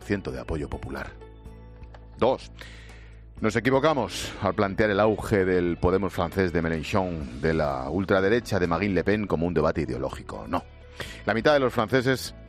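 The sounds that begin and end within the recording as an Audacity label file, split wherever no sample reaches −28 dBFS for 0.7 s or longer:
2.220000	2.620000	sound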